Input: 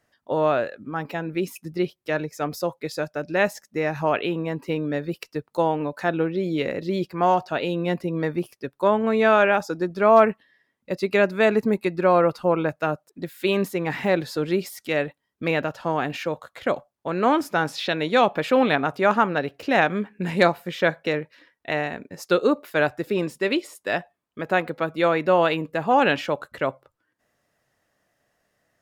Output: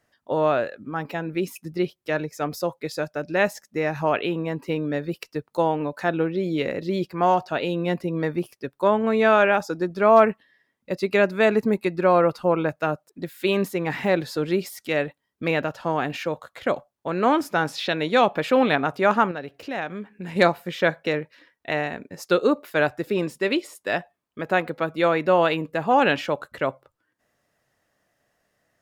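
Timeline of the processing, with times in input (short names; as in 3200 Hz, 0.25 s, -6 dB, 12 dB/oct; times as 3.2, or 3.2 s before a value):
19.31–20.36 compressor 1.5:1, threshold -43 dBFS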